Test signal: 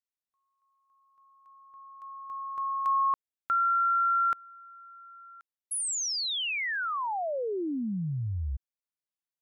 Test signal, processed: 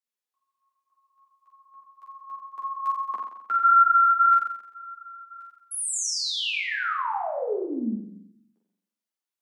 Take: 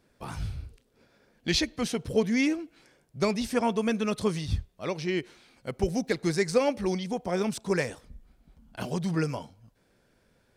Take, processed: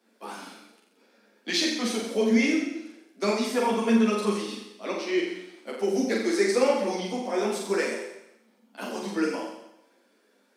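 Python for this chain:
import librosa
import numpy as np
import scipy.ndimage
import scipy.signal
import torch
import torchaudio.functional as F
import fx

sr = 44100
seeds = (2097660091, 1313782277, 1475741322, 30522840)

p1 = scipy.signal.sosfilt(scipy.signal.butter(12, 210.0, 'highpass', fs=sr, output='sos'), x)
p2 = p1 + fx.room_flutter(p1, sr, wall_m=7.5, rt60_s=0.88, dry=0)
p3 = fx.ensemble(p2, sr)
y = F.gain(torch.from_numpy(p3), 3.0).numpy()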